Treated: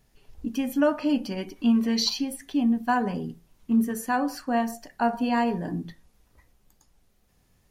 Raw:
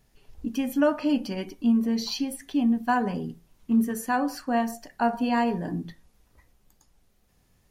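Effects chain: 1.55–2.08 s: peaking EQ 1.5 kHz -> 4.5 kHz +10 dB 2.6 oct

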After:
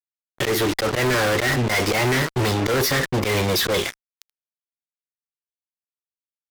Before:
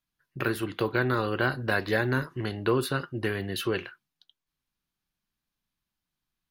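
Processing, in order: slow attack 116 ms; formant shift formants +4 st; fuzz box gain 47 dB, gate -44 dBFS; trim -5 dB

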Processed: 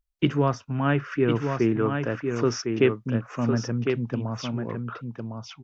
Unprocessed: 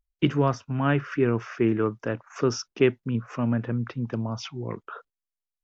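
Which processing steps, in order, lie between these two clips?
delay 1056 ms -5.5 dB

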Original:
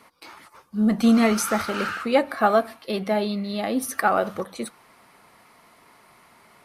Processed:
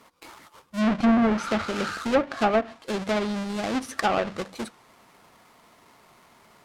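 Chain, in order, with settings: square wave that keeps the level; low-pass that closes with the level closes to 1.6 kHz, closed at -11 dBFS; trim -6 dB

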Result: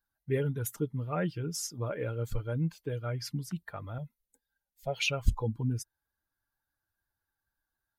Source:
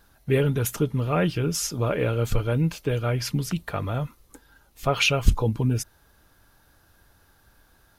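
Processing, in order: expander on every frequency bin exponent 1.5; 3.98–5.08 s: static phaser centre 310 Hz, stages 6; trim -6.5 dB

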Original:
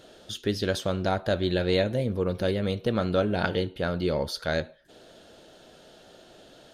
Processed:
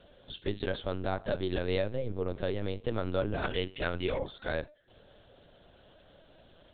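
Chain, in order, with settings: LPC vocoder at 8 kHz pitch kept; 3.50–4.19 s: peaking EQ 2.5 kHz +10 dB 1.4 oct; trim -6 dB

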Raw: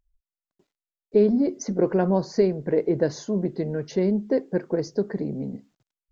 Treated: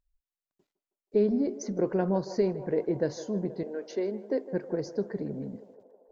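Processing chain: 3.63–4.51 s: steep high-pass 250 Hz 36 dB/octave; on a send: band-passed feedback delay 159 ms, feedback 83%, band-pass 740 Hz, level -13 dB; on the sum: trim -6 dB

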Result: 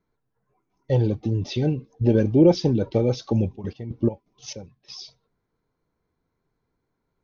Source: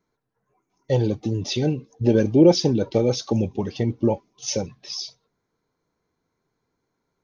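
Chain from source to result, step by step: bass shelf 85 Hz +11.5 dB; 3.47–4.95 s: trance gate "xxx....x.x..xx.." 169 bpm -12 dB; distance through air 130 m; trim -2 dB

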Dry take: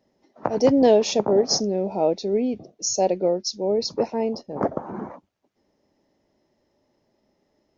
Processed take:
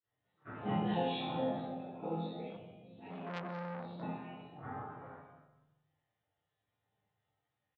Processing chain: chord resonator F3 minor, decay 0.69 s; spectral gate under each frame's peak -15 dB weak; reverberation RT60 1.1 s, pre-delay 3 ms, DRR -10.5 dB; resampled via 8 kHz; 2.50–4.03 s: transformer saturation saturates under 1.8 kHz; trim -2 dB

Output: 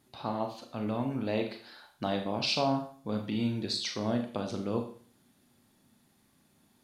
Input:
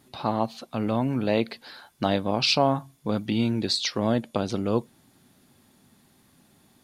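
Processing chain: Schroeder reverb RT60 0.47 s, combs from 26 ms, DRR 4 dB; trim -8.5 dB

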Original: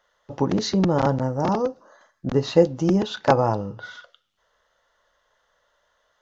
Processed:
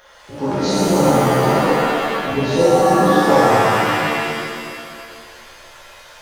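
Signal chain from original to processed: de-hum 62.46 Hz, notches 29; in parallel at +0.5 dB: upward compressor, threshold -24 dBFS; on the sum: pitch-shifted reverb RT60 2.1 s, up +7 st, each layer -2 dB, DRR -10.5 dB; trim -13 dB

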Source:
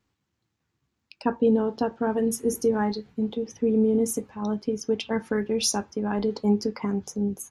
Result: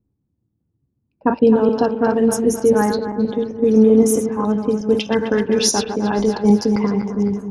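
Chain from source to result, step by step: backward echo that repeats 130 ms, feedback 66%, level -7 dB; level-controlled noise filter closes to 310 Hz, open at -18.5 dBFS; 3.73–4.45 s: peaking EQ 1.2 kHz +7.5 dB 1.1 oct; trim +7.5 dB

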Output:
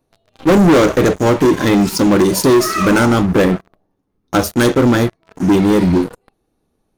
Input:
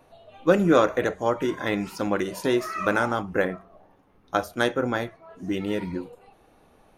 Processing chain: high-order bell 1.3 kHz -9 dB 2.9 oct; waveshaping leveller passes 5; trim +3 dB

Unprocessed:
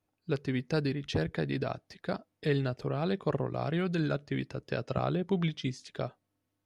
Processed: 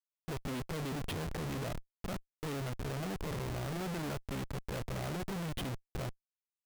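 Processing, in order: level-controlled noise filter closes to 960 Hz, open at -26.5 dBFS; pre-echo 32 ms -15 dB; Schmitt trigger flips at -40.5 dBFS; trim -4.5 dB

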